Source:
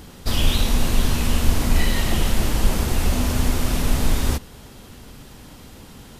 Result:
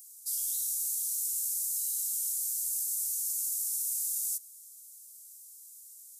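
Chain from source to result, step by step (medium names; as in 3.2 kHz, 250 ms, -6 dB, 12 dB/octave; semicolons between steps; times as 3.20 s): inverse Chebyshev high-pass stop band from 2.4 kHz, stop band 60 dB; trim +4.5 dB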